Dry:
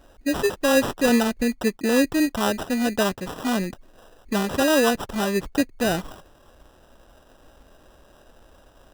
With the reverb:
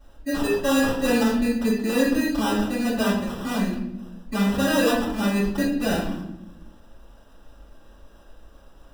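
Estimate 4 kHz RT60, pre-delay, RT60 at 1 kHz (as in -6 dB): 0.60 s, 3 ms, 0.70 s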